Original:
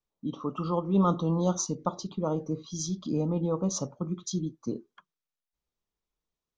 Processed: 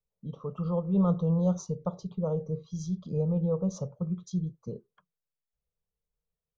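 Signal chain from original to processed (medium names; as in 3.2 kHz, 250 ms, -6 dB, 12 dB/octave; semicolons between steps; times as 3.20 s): FFT filter 180 Hz 0 dB, 300 Hz -23 dB, 460 Hz 0 dB, 830 Hz -11 dB, 4.1 kHz -16 dB; trim +2.5 dB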